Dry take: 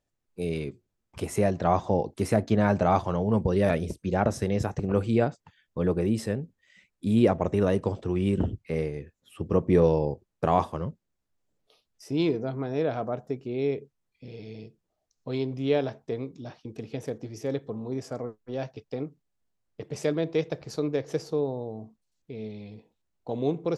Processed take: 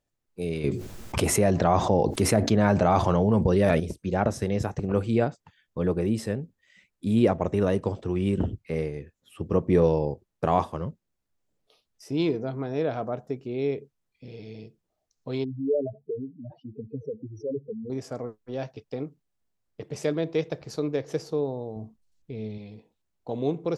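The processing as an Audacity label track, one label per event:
0.640000	3.800000	envelope flattener amount 70%
15.440000	17.900000	expanding power law on the bin magnitudes exponent 3.7
21.760000	22.580000	low-shelf EQ 110 Hz +11.5 dB

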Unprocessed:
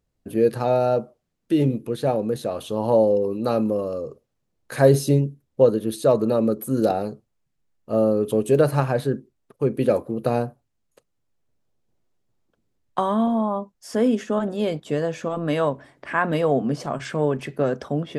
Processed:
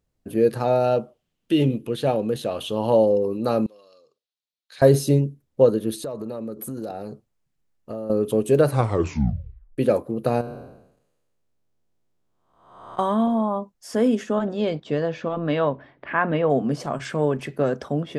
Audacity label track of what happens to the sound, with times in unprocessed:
0.840000	3.060000	parametric band 3,000 Hz +10 dB 0.53 octaves
3.660000	4.820000	resonant band-pass 3,900 Hz, Q 2.8
5.940000	8.100000	downward compressor, threshold −28 dBFS
8.680000	8.680000	tape stop 1.10 s
10.410000	12.990000	spectrum smeared in time width 484 ms
14.320000	16.490000	low-pass filter 6,900 Hz → 2,900 Hz 24 dB per octave

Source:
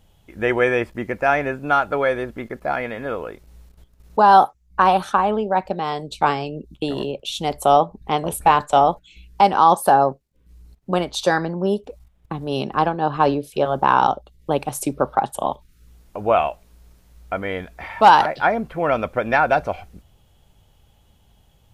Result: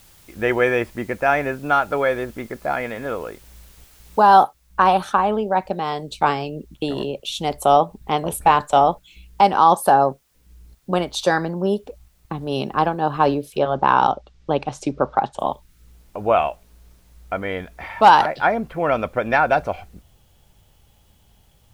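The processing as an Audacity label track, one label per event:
4.430000	4.430000	noise floor change −52 dB −66 dB
13.590000	15.390000	low-pass filter 6,100 Hz 24 dB per octave

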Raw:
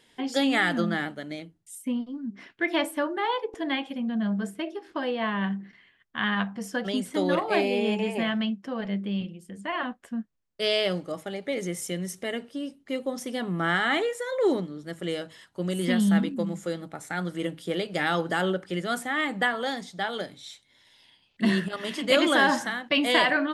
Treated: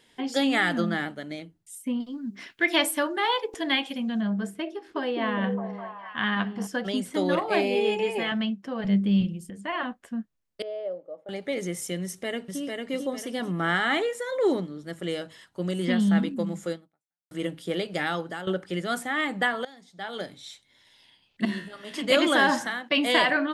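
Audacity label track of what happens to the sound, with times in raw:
2.000000	4.210000	high-shelf EQ 2,500 Hz +12 dB
4.740000	6.670000	echo through a band-pass that steps 205 ms, band-pass from 320 Hz, each repeat 0.7 octaves, level −1 dB
7.750000	8.320000	comb filter 2.4 ms, depth 63%
8.840000	9.500000	bass and treble bass +11 dB, treble +8 dB
10.620000	11.290000	resonant band-pass 550 Hz, Q 5.9
12.030000	12.610000	delay throw 450 ms, feedback 35%, level −3 dB
15.710000	16.180000	high-frequency loss of the air 57 metres
16.720000	17.310000	fade out exponential
17.900000	18.470000	fade out, to −13.5 dB
19.650000	20.250000	fade in quadratic, from −19 dB
21.450000	21.940000	tuned comb filter 70 Hz, decay 0.51 s, mix 80%
22.670000	23.070000	high-pass filter 260 Hz → 120 Hz

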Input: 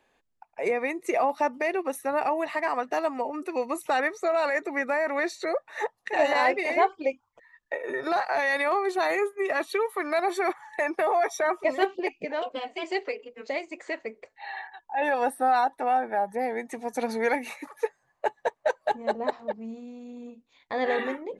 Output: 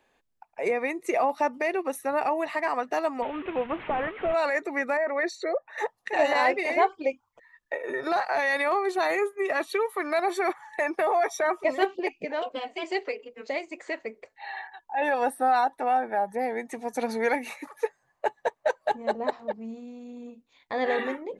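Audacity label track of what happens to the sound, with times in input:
3.220000	4.340000	linear delta modulator 16 kbit/s, step −34.5 dBFS
4.970000	5.780000	spectral envelope exaggerated exponent 1.5

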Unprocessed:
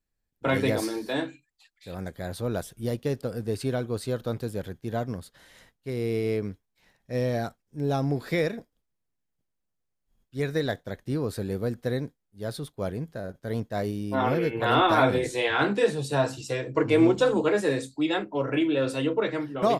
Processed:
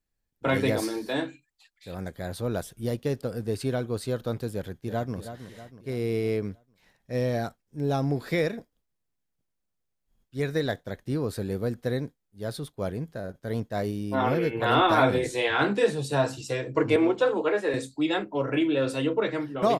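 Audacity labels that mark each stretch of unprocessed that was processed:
4.540000	5.170000	delay throw 320 ms, feedback 50%, level −10.5 dB
16.960000	17.740000	three-way crossover with the lows and the highs turned down lows −14 dB, under 310 Hz, highs −12 dB, over 3,600 Hz

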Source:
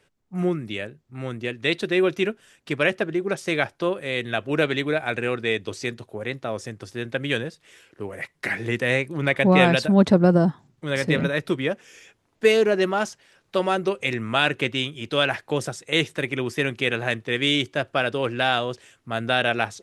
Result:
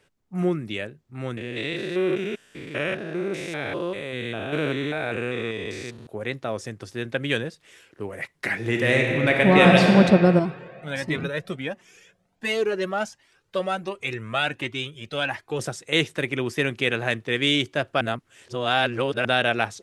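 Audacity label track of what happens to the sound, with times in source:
1.370000	6.070000	spectrum averaged block by block every 200 ms
8.570000	9.860000	thrown reverb, RT60 2.8 s, DRR 0 dB
10.390000	15.590000	flanger whose copies keep moving one way rising 1.4 Hz
18.010000	19.250000	reverse

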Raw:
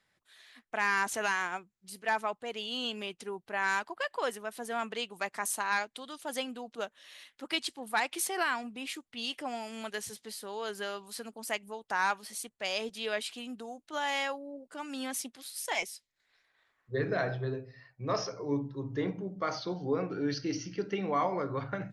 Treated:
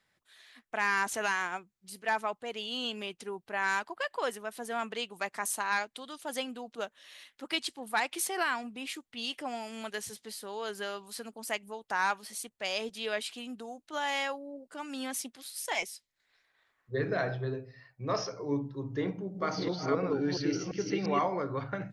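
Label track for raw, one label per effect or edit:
19.000000	21.280000	delay that plays each chunk backwards 343 ms, level −2 dB

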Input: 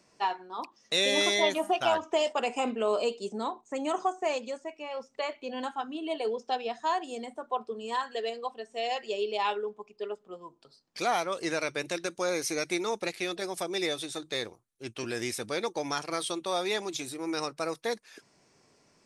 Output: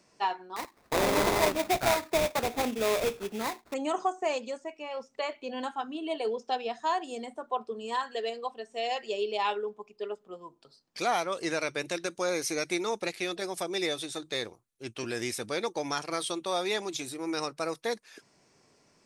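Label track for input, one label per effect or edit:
0.560000	3.740000	sample-rate reduction 3,000 Hz, jitter 20%

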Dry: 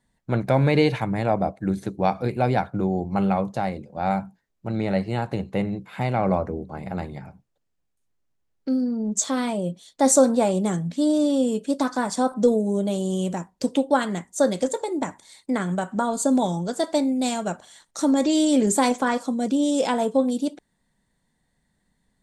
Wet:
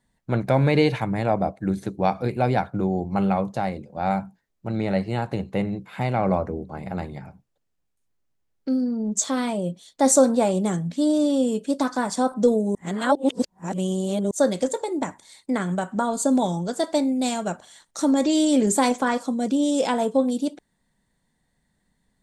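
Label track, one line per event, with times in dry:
12.750000	14.310000	reverse

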